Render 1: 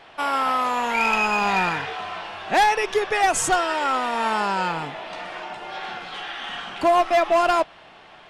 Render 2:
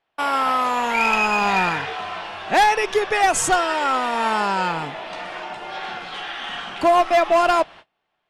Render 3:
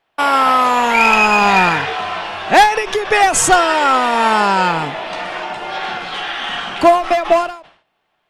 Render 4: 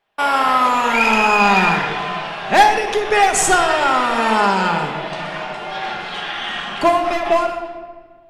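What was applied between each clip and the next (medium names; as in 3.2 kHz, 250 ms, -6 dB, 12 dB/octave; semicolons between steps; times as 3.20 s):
gate -41 dBFS, range -30 dB; trim +2 dB
endings held to a fixed fall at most 110 dB/s; trim +7.5 dB
reverberation RT60 1.6 s, pre-delay 5 ms, DRR 3 dB; trim -4 dB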